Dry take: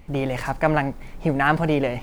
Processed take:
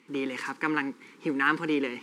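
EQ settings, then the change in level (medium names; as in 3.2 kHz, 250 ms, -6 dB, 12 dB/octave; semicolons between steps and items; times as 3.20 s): high-pass 250 Hz 24 dB/octave; Butterworth band-stop 660 Hz, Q 1.2; low-pass 9.1 kHz 12 dB/octave; -2.5 dB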